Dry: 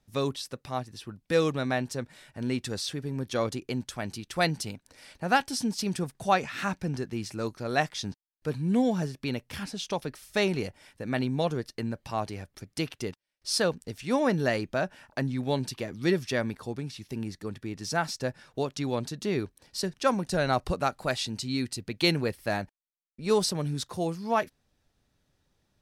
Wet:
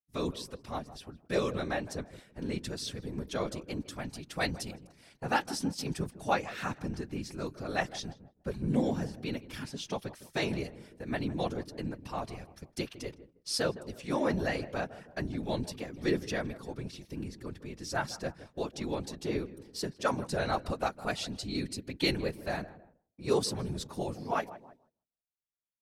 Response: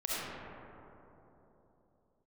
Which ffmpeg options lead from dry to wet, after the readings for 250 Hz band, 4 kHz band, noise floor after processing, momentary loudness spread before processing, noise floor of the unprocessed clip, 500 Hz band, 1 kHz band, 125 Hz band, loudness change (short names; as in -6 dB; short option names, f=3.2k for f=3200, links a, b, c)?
-5.0 dB, -5.0 dB, -73 dBFS, 11 LU, -75 dBFS, -5.0 dB, -5.0 dB, -5.5 dB, -5.0 dB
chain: -filter_complex "[0:a]asplit=2[a][b];[b]adelay=159,lowpass=f=1.1k:p=1,volume=-14.5dB,asplit=2[c][d];[d]adelay=159,lowpass=f=1.1k:p=1,volume=0.51,asplit=2[e][f];[f]adelay=159,lowpass=f=1.1k:p=1,volume=0.51,asplit=2[g][h];[h]adelay=159,lowpass=f=1.1k:p=1,volume=0.51,asplit=2[i][j];[j]adelay=159,lowpass=f=1.1k:p=1,volume=0.51[k];[a][c][e][g][i][k]amix=inputs=6:normalize=0,agate=range=-33dB:threshold=-45dB:ratio=3:detection=peak,afftfilt=real='hypot(re,im)*cos(2*PI*random(0))':imag='hypot(re,im)*sin(2*PI*random(1))':win_size=512:overlap=0.75,volume=1dB"